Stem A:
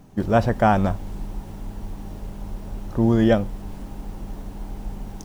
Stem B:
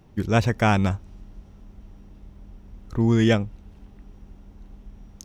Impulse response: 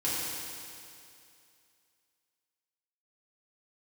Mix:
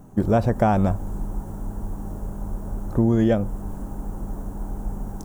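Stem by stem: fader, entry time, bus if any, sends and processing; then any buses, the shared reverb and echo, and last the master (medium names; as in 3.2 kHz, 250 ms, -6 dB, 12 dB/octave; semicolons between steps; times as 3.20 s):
+2.5 dB, 0.00 s, no send, high-order bell 3.2 kHz -15.5 dB
-8.5 dB, 0.00 s, no send, none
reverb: none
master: compression 5:1, threshold -15 dBFS, peak gain reduction 7 dB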